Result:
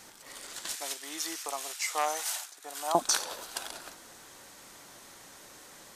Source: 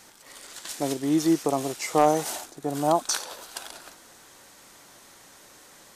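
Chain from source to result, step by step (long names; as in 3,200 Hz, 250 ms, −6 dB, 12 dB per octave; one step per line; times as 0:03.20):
0:00.75–0:02.95: high-pass filter 1,300 Hz 12 dB per octave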